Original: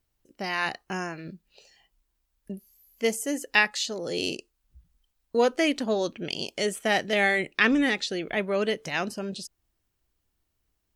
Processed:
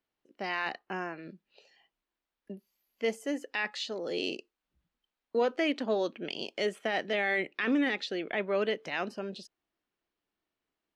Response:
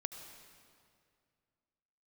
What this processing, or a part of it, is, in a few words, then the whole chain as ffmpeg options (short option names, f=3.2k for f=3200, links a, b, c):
DJ mixer with the lows and highs turned down: -filter_complex "[0:a]asettb=1/sr,asplit=3[a][b][c];[a]atrim=end=0.794[d];[b]atrim=start=0.79:end=1.23,asetpts=PTS-STARTPTS,afade=t=in:d=0.004:c=qsin,afade=t=out:st=0.436:d=0.004:c=qsin,aemphasis=mode=reproduction:type=50kf[e];[c]atrim=start=1.226[f];[d][e]acrossfade=d=0.004:c1=hsin:c2=qsin[g];[g][f]acrossfade=d=0.004:c1=qsin:c2=hsin,acrossover=split=190 4300:gain=0.0794 1 0.126[h][i][j];[h][i][j]amix=inputs=3:normalize=0,alimiter=limit=-17dB:level=0:latency=1:release=12,volume=-2.5dB"